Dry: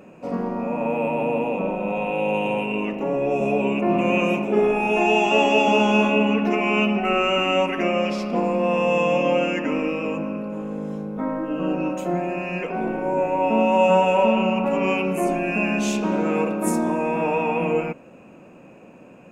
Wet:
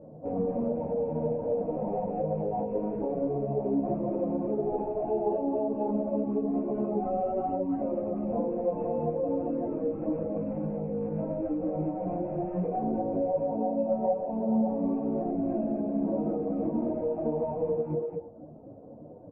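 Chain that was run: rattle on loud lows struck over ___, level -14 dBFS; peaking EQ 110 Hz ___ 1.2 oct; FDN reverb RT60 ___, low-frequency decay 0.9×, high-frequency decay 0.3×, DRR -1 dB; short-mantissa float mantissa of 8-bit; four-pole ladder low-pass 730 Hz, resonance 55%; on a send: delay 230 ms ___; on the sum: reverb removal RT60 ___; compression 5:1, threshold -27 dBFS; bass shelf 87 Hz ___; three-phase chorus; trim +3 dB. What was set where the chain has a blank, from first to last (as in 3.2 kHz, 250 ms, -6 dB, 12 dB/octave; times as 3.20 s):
-37 dBFS, +11.5 dB, 0.92 s, -7.5 dB, 0.6 s, +7.5 dB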